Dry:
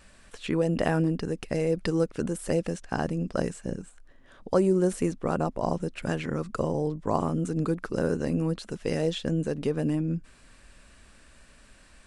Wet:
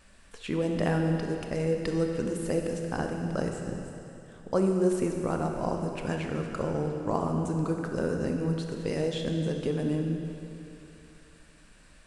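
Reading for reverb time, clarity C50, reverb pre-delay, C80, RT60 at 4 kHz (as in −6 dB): 2.9 s, 4.0 dB, 22 ms, 4.5 dB, 2.8 s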